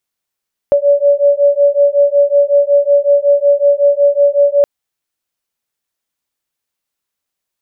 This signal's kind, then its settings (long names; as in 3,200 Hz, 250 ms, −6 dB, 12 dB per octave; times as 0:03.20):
two tones that beat 568 Hz, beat 5.4 Hz, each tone −10.5 dBFS 3.92 s